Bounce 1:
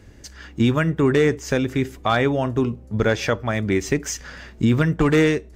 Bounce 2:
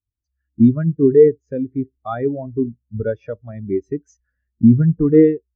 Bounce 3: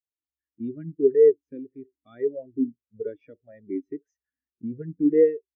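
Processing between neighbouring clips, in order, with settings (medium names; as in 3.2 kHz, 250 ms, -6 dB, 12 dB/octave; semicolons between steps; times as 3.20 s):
spectral contrast expander 2.5:1; trim +7 dB
talking filter e-i 1.7 Hz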